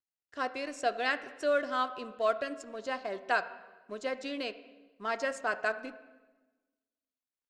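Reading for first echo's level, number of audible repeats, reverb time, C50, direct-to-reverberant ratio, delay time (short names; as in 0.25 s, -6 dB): none, none, 1.2 s, 14.0 dB, 11.0 dB, none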